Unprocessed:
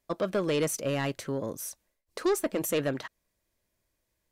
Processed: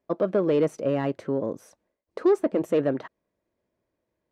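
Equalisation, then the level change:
resonant band-pass 380 Hz, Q 0.64
+6.5 dB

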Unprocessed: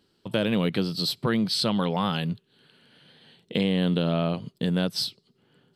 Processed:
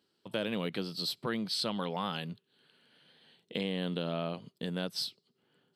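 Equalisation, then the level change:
high-pass filter 270 Hz 6 dB per octave
−7.0 dB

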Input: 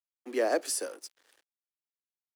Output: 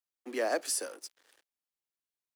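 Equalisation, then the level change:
dynamic equaliser 390 Hz, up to −6 dB, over −41 dBFS, Q 1.1
0.0 dB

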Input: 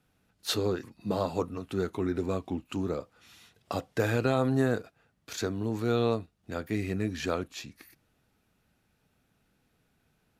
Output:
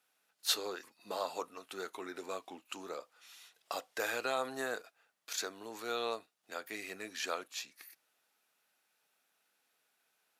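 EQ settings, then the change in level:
high-pass filter 680 Hz 12 dB per octave
high-shelf EQ 4,200 Hz +6 dB
−3.0 dB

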